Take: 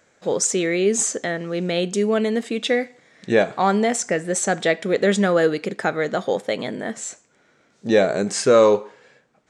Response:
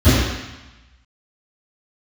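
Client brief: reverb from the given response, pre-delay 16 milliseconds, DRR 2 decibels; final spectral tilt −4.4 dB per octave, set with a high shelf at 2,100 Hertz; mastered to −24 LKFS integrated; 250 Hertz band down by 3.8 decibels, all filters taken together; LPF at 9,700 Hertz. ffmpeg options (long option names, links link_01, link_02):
-filter_complex "[0:a]lowpass=9700,equalizer=frequency=250:width_type=o:gain=-5.5,highshelf=frequency=2100:gain=4.5,asplit=2[link_01][link_02];[1:a]atrim=start_sample=2205,adelay=16[link_03];[link_02][link_03]afir=irnorm=-1:irlink=0,volume=-26.5dB[link_04];[link_01][link_04]amix=inputs=2:normalize=0,volume=-7.5dB"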